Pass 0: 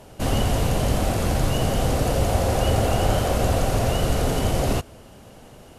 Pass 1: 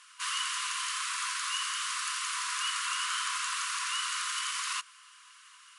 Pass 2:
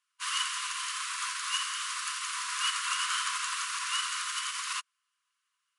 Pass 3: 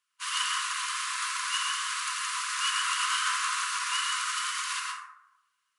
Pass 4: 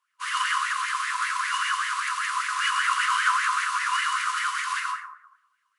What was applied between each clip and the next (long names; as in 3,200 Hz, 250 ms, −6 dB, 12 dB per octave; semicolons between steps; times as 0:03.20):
brick-wall band-pass 990–11,000 Hz
expander for the loud parts 2.5 to 1, over −51 dBFS; level +4 dB
dense smooth reverb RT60 0.89 s, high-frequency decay 0.4×, pre-delay 95 ms, DRR −1 dB
auto-filter bell 5.1 Hz 930–2,000 Hz +16 dB; level −3.5 dB